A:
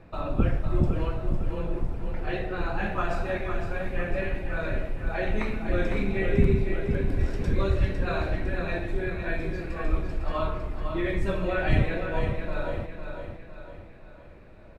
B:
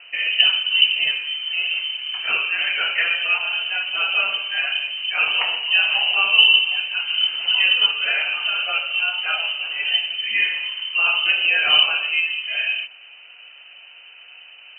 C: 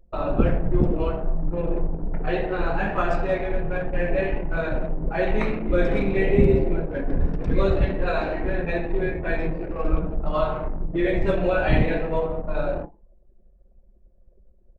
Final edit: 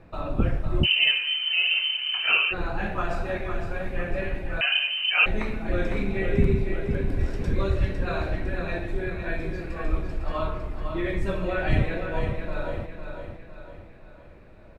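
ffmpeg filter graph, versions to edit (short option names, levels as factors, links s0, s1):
-filter_complex "[1:a]asplit=2[s0][s1];[0:a]asplit=3[s2][s3][s4];[s2]atrim=end=0.87[s5];[s0]atrim=start=0.83:end=2.54[s6];[s3]atrim=start=2.5:end=4.612[s7];[s1]atrim=start=4.608:end=5.262[s8];[s4]atrim=start=5.258[s9];[s5][s6]acrossfade=d=0.04:c1=tri:c2=tri[s10];[s10][s7]acrossfade=d=0.04:c1=tri:c2=tri[s11];[s11][s8]acrossfade=d=0.004:c1=hsin:c2=hsin[s12];[s12][s9]acrossfade=d=0.004:c1=hsin:c2=hsin"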